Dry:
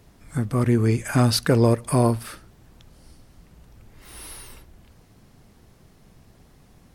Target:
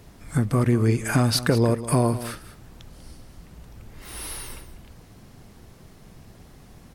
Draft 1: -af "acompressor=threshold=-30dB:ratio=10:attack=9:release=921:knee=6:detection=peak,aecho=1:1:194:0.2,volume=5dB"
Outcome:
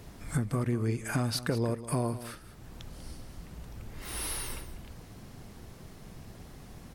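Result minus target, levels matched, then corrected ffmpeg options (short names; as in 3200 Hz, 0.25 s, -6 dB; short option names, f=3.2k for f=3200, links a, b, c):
compressor: peak gain reduction +10 dB
-af "acompressor=threshold=-19dB:ratio=10:attack=9:release=921:knee=6:detection=peak,aecho=1:1:194:0.2,volume=5dB"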